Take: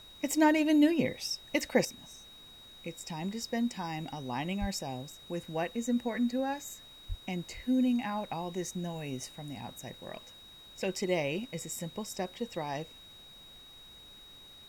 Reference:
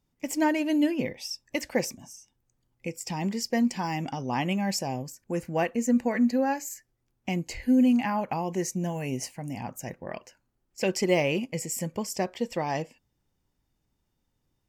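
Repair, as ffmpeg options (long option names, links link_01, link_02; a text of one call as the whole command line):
ffmpeg -i in.wav -filter_complex "[0:a]bandreject=frequency=3800:width=30,asplit=3[link_01][link_02][link_03];[link_01]afade=type=out:start_time=4.6:duration=0.02[link_04];[link_02]highpass=frequency=140:width=0.5412,highpass=frequency=140:width=1.3066,afade=type=in:start_time=4.6:duration=0.02,afade=type=out:start_time=4.72:duration=0.02[link_05];[link_03]afade=type=in:start_time=4.72:duration=0.02[link_06];[link_04][link_05][link_06]amix=inputs=3:normalize=0,asplit=3[link_07][link_08][link_09];[link_07]afade=type=out:start_time=7.08:duration=0.02[link_10];[link_08]highpass=frequency=140:width=0.5412,highpass=frequency=140:width=1.3066,afade=type=in:start_time=7.08:duration=0.02,afade=type=out:start_time=7.2:duration=0.02[link_11];[link_09]afade=type=in:start_time=7.2:duration=0.02[link_12];[link_10][link_11][link_12]amix=inputs=3:normalize=0,agate=range=-21dB:threshold=-45dB,asetnsamples=nb_out_samples=441:pad=0,asendcmd='1.85 volume volume 7dB',volume=0dB" out.wav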